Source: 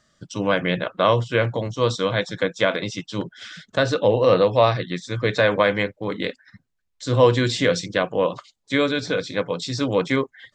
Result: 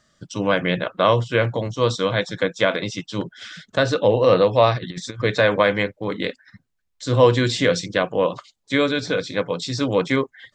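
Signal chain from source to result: 4.78–5.22 negative-ratio compressor -31 dBFS, ratio -0.5; gain +1 dB

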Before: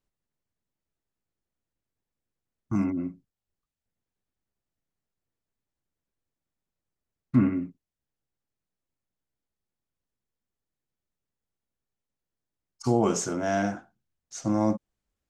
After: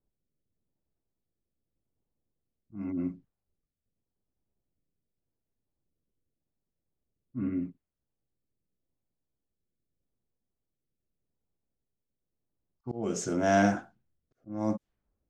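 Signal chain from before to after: auto swell 0.528 s; low-pass opened by the level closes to 660 Hz, open at -30.5 dBFS; rotary speaker horn 0.85 Hz; gain +5.5 dB

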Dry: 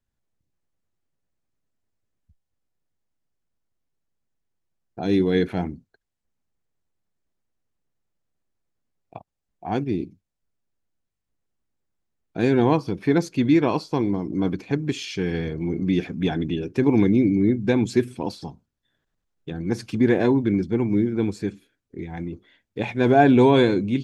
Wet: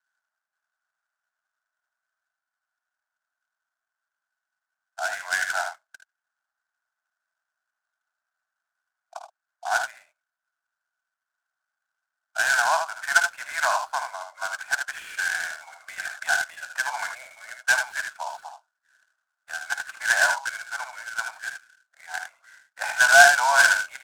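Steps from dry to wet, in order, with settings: steep high-pass 620 Hz 96 dB/oct; early reflections 54 ms -12 dB, 77 ms -7 dB; in parallel at -5 dB: soft clip -19 dBFS, distortion -10 dB; on the sum: synth low-pass 1500 Hz, resonance Q 12; noise-modulated delay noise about 5100 Hz, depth 0.033 ms; gain -4.5 dB

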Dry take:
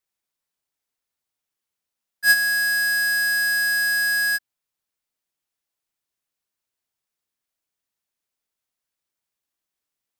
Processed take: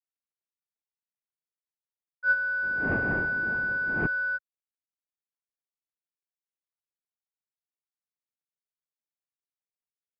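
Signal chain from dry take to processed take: switching dead time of 0.18 ms; 2.62–4.05 wind noise 450 Hz -24 dBFS; mistuned SSB -170 Hz 260–2700 Hz; gain -2 dB

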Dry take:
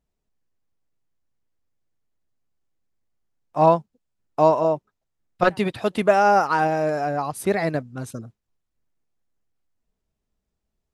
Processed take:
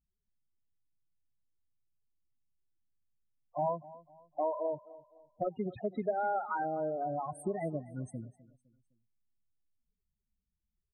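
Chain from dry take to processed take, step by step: 4.71–5.56 polynomial smoothing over 65 samples; loudest bins only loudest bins 8; compressor 2.5:1, threshold -27 dBFS, peak gain reduction 10.5 dB; feedback echo 0.255 s, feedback 38%, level -19 dB; gain -6.5 dB

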